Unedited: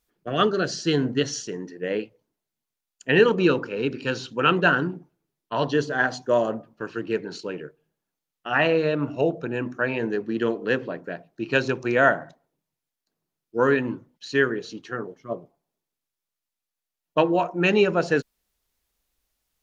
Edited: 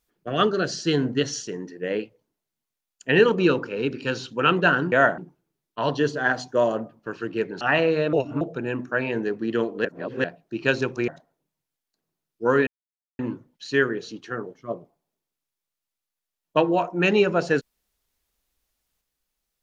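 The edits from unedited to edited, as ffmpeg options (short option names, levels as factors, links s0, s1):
-filter_complex "[0:a]asplit=10[s0][s1][s2][s3][s4][s5][s6][s7][s8][s9];[s0]atrim=end=4.922[s10];[s1]atrim=start=11.948:end=12.212[s11];[s2]atrim=start=4.918:end=7.352[s12];[s3]atrim=start=8.478:end=9.002[s13];[s4]atrim=start=8.998:end=9.282,asetpts=PTS-STARTPTS,areverse[s14];[s5]atrim=start=9.278:end=10.722[s15];[s6]atrim=start=10.718:end=11.112,asetpts=PTS-STARTPTS,areverse[s16];[s7]atrim=start=11.108:end=11.952[s17];[s8]atrim=start=12.208:end=13.8,asetpts=PTS-STARTPTS,afade=t=out:st=1.588:d=0.004:c=hsin,apad=pad_dur=0.52[s18];[s9]atrim=start=13.8,asetpts=PTS-STARTPTS,afade=t=in:d=0.004:c=hsin[s19];[s10][s11]acrossfade=d=0.004:c1=hsin:c2=hsin[s20];[s20][s12]acrossfade=d=0.004:c1=hsin:c2=hsin[s21];[s21][s13]acrossfade=d=0.004:c1=hsin:c2=hsin[s22];[s22][s14]acrossfade=d=0.004:c1=hsin:c2=hsin[s23];[s23][s15]acrossfade=d=0.004:c1=hsin:c2=hsin[s24];[s24][s16]acrossfade=d=0.004:c1=hsin:c2=hsin[s25];[s25][s17]acrossfade=d=0.004:c1=hsin:c2=hsin[s26];[s18][s19]concat=n=2:v=0:a=1[s27];[s26][s27]acrossfade=d=0.004:c1=hsin:c2=hsin"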